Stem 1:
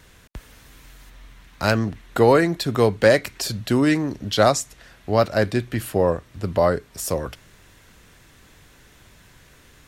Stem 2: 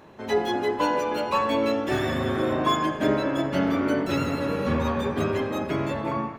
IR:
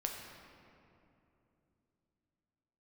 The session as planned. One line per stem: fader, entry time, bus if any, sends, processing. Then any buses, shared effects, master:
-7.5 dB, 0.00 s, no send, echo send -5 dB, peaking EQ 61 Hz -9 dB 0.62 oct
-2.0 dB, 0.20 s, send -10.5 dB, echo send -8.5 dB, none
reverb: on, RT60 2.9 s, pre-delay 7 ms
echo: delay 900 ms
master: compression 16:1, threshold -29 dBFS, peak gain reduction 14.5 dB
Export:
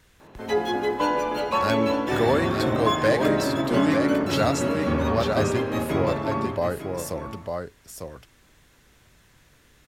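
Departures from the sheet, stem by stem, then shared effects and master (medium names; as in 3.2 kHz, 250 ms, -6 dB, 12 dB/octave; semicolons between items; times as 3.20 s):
stem 1: missing peaking EQ 61 Hz -9 dB 0.62 oct; master: missing compression 16:1, threshold -29 dBFS, peak gain reduction 14.5 dB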